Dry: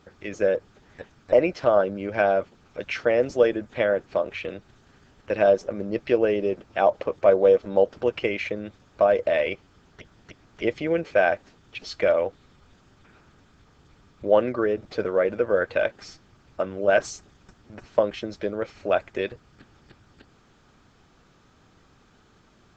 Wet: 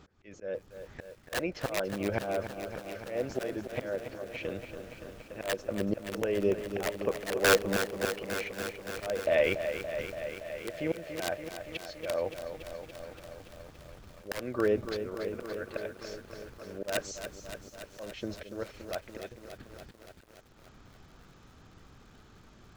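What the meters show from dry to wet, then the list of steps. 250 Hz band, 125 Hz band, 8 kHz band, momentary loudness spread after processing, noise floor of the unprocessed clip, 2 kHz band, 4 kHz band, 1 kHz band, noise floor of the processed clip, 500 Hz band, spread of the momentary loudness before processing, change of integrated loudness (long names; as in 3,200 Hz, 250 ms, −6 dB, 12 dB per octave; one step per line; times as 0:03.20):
−6.0 dB, −3.0 dB, can't be measured, 18 LU, −59 dBFS, −5.5 dB, 0.0 dB, −10.5 dB, −57 dBFS, −11.0 dB, 12 LU, −10.0 dB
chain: low-shelf EQ 110 Hz +7.5 dB
wrap-around overflow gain 10 dB
volume swells 526 ms
feedback echo with a high-pass in the loop 1,086 ms, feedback 57%, high-pass 950 Hz, level −23.5 dB
feedback echo at a low word length 285 ms, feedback 80%, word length 9 bits, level −9 dB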